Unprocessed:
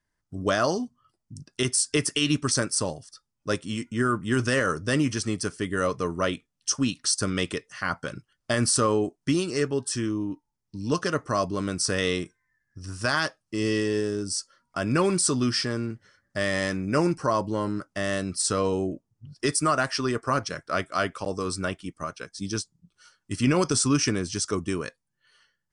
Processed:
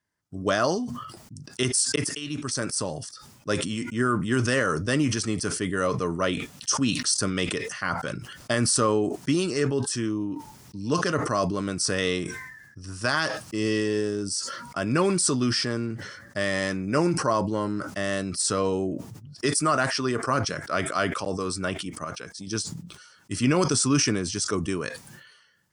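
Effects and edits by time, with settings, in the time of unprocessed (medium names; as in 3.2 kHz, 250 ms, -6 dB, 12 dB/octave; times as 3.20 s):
1.96–3.51 s: fade in equal-power
22.04–22.47 s: compression, threshold -34 dBFS
whole clip: high-pass 86 Hz; decay stretcher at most 49 dB/s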